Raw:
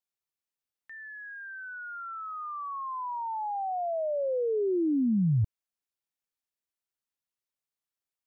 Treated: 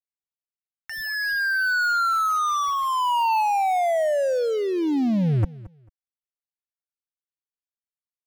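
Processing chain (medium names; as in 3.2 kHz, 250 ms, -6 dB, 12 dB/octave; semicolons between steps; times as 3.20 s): median filter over 15 samples; peaking EQ 410 Hz -15 dB 2 oct; comb 1.4 ms, depth 42%; 3.40–5.43 s: compression 4:1, threshold -40 dBFS, peak gain reduction 13 dB; waveshaping leveller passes 5; feedback delay 222 ms, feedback 20%, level -19 dB; trim +4 dB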